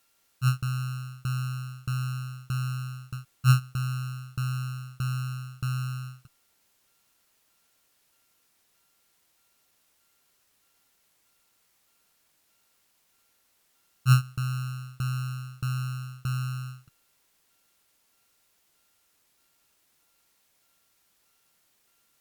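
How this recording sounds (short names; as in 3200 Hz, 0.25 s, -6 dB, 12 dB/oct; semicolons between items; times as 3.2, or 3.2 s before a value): a buzz of ramps at a fixed pitch in blocks of 32 samples; tremolo saw down 1.6 Hz, depth 100%; a quantiser's noise floor 12-bit, dither triangular; Opus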